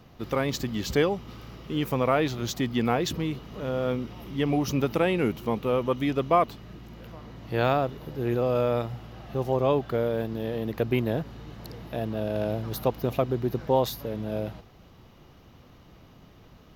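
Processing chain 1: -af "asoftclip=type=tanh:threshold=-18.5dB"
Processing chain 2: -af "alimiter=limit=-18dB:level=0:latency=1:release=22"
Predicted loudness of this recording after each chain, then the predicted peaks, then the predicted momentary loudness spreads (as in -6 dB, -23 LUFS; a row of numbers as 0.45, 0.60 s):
-29.5, -30.0 LUFS; -18.5, -18.0 dBFS; 13, 11 LU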